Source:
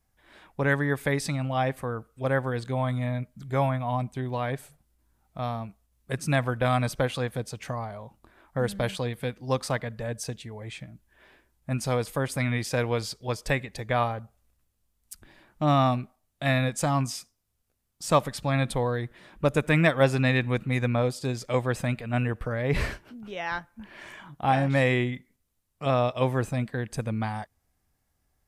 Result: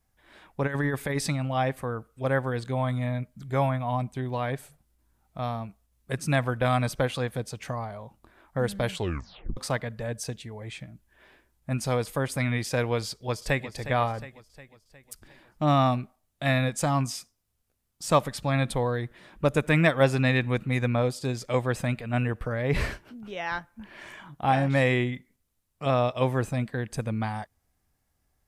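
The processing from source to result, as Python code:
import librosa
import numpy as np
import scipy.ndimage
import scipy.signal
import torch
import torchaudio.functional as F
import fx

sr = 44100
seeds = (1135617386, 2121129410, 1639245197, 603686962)

y = fx.over_compress(x, sr, threshold_db=-26.0, ratio=-0.5, at=(0.66, 1.32), fade=0.02)
y = fx.echo_throw(y, sr, start_s=13.05, length_s=0.66, ms=360, feedback_pct=55, wet_db=-12.5)
y = fx.edit(y, sr, fx.tape_stop(start_s=8.91, length_s=0.66), tone=tone)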